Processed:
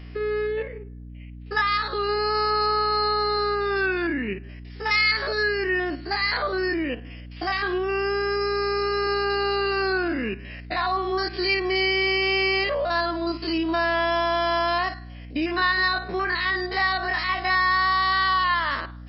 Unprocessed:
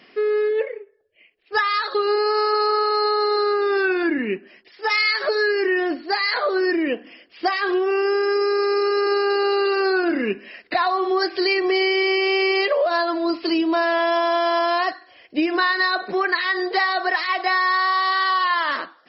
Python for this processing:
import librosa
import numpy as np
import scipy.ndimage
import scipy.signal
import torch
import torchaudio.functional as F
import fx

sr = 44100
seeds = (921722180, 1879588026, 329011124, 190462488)

y = fx.spec_steps(x, sr, hold_ms=50)
y = fx.dynamic_eq(y, sr, hz=460.0, q=0.79, threshold_db=-32.0, ratio=4.0, max_db=-6)
y = fx.add_hum(y, sr, base_hz=60, snr_db=15)